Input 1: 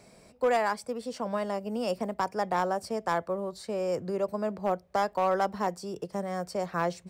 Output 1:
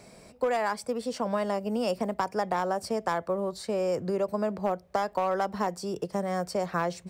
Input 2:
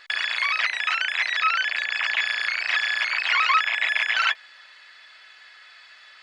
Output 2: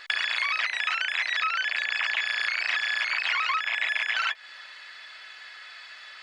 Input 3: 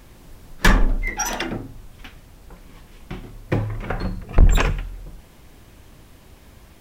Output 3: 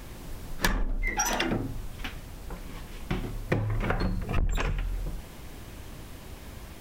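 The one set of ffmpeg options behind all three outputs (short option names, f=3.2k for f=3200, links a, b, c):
-filter_complex "[0:a]asplit=2[a][b];[b]asoftclip=type=tanh:threshold=-11.5dB,volume=-4.5dB[c];[a][c]amix=inputs=2:normalize=0,acompressor=threshold=-23dB:ratio=16"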